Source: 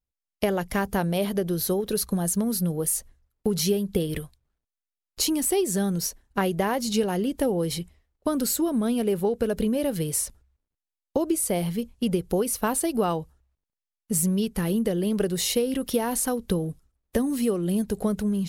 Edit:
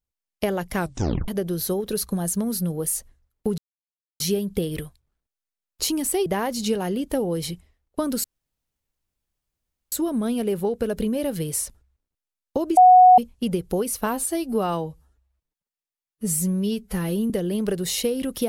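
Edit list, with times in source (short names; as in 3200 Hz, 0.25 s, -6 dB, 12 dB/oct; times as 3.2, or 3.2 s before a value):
0.76 tape stop 0.52 s
3.58 insert silence 0.62 s
5.64–6.54 cut
8.52 insert room tone 1.68 s
11.37–11.78 bleep 735 Hz -7.5 dBFS
12.66–14.82 stretch 1.5×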